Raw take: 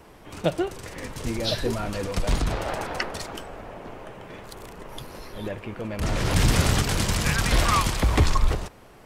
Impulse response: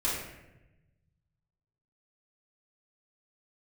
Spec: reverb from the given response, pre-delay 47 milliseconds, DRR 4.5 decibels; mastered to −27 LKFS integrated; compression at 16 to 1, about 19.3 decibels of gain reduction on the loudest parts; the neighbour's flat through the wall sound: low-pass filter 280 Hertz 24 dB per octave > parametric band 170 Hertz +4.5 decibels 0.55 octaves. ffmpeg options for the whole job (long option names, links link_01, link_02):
-filter_complex "[0:a]acompressor=threshold=-33dB:ratio=16,asplit=2[link_01][link_02];[1:a]atrim=start_sample=2205,adelay=47[link_03];[link_02][link_03]afir=irnorm=-1:irlink=0,volume=-12.5dB[link_04];[link_01][link_04]amix=inputs=2:normalize=0,lowpass=frequency=280:width=0.5412,lowpass=frequency=280:width=1.3066,equalizer=frequency=170:width_type=o:width=0.55:gain=4.5,volume=13dB"